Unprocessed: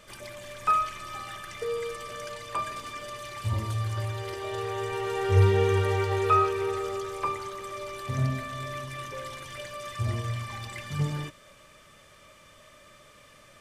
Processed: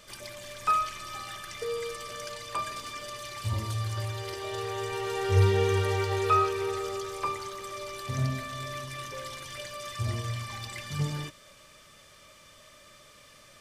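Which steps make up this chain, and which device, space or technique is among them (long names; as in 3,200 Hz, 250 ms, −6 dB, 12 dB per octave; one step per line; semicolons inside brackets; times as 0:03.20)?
presence and air boost (parametric band 4,800 Hz +6 dB 1.1 octaves; high-shelf EQ 9,800 Hz +6.5 dB)
level −2 dB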